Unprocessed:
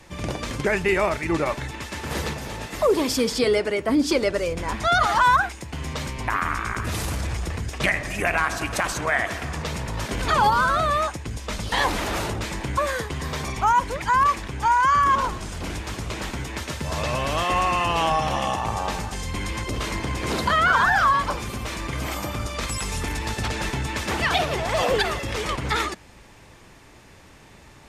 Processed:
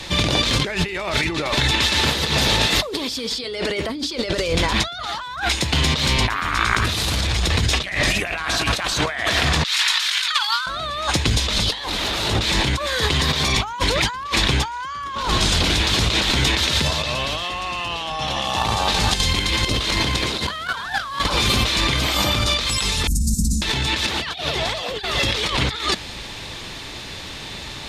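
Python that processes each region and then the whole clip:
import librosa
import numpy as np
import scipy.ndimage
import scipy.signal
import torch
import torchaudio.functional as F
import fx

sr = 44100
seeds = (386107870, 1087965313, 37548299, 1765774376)

y = fx.chain(x, sr, fx.highpass(hz=1300.0, slope=24),
    fx.over_compress(threshold_db=-30.0, ratio=-0.5), at=(9.64, 10.67))
y = fx.chain(y, sr, fx.cvsd(bps=64000),
    fx.chopper(hz=3.9, depth_pct=65, duty_pct=75), at=(18.43, 21.39))
y = fx.chain(y, sr, fx.cheby2_bandstop(low_hz=500.0, high_hz=3400.0, order=4, stop_db=50),
    fx.comb(ms=4.4, depth=0.74), at=(23.07, 23.62))
y = fx.peak_eq(y, sr, hz=3800.0, db=15.0, octaves=0.94)
y = fx.over_compress(y, sr, threshold_db=-29.0, ratio=-1.0)
y = y * librosa.db_to_amplitude(6.5)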